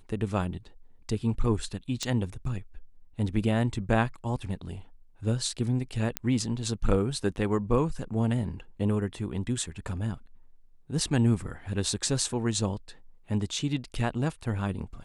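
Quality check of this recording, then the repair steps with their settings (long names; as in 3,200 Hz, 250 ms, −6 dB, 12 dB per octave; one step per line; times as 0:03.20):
0:02.03: click −17 dBFS
0:06.17: click −10 dBFS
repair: click removal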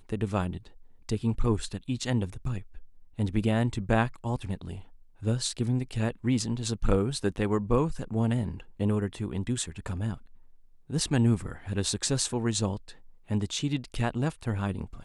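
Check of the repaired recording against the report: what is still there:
none of them is left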